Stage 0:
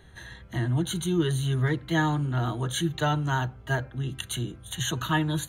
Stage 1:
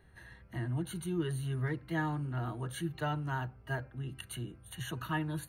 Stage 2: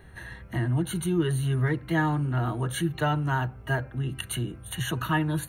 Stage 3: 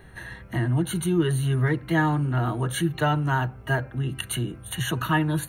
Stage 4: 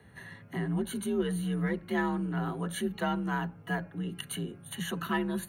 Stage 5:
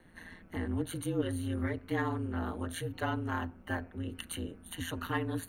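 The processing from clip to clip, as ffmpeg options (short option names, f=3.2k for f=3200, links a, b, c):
-af "superequalizer=13b=0.355:15b=0.282,volume=-9dB"
-filter_complex "[0:a]bandreject=f=4.8k:w=5.3,asplit=2[a][b];[b]acompressor=threshold=-41dB:ratio=6,volume=-2.5dB[c];[a][c]amix=inputs=2:normalize=0,volume=7dB"
-af "equalizer=f=69:t=o:w=0.77:g=-5,volume=3dB"
-af "aeval=exprs='0.282*(cos(1*acos(clip(val(0)/0.282,-1,1)))-cos(1*PI/2))+0.0282*(cos(2*acos(clip(val(0)/0.282,-1,1)))-cos(2*PI/2))':c=same,afreqshift=46,volume=-8dB"
-af "aeval=exprs='val(0)*sin(2*PI*85*n/s)':c=same"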